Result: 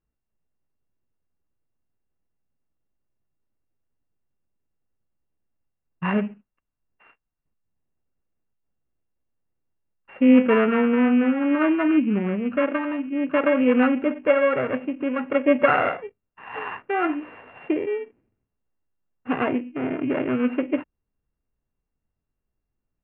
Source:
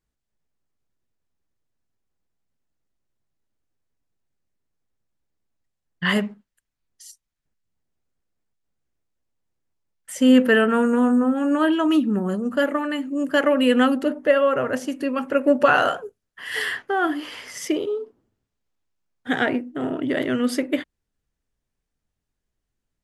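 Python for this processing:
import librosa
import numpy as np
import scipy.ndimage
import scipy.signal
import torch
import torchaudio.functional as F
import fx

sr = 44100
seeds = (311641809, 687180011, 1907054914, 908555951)

y = np.r_[np.sort(x[:len(x) // 16 * 16].reshape(-1, 16), axis=1).ravel(), x[len(x) // 16 * 16:]]
y = scipy.signal.sosfilt(scipy.signal.cheby2(4, 50, 5100.0, 'lowpass', fs=sr, output='sos'), y)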